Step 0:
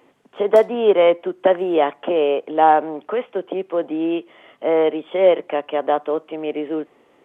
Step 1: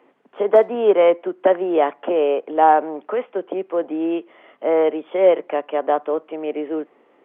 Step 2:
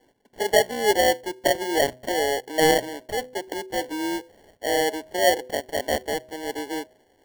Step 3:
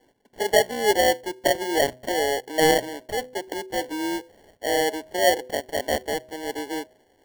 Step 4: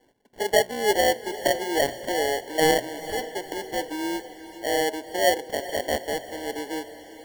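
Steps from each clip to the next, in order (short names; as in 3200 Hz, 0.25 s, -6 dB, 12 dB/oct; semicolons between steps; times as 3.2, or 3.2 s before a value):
three-band isolator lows -23 dB, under 180 Hz, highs -15 dB, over 2800 Hz
sample-and-hold 35×; de-hum 126.3 Hz, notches 5; gain -5.5 dB
nothing audible
diffused feedback echo 0.45 s, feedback 53%, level -14 dB; gain -1.5 dB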